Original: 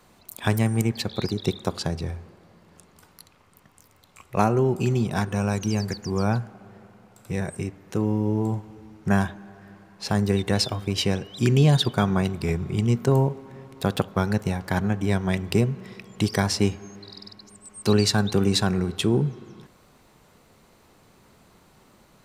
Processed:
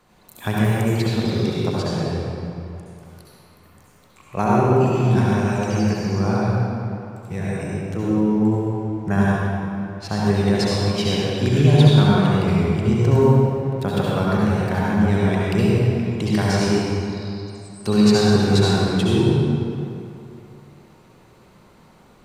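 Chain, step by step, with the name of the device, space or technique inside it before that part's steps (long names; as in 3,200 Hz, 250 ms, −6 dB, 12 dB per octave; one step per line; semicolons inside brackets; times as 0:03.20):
swimming-pool hall (convolution reverb RT60 2.6 s, pre-delay 62 ms, DRR −6 dB; high-shelf EQ 4,700 Hz −5.5 dB)
level −2 dB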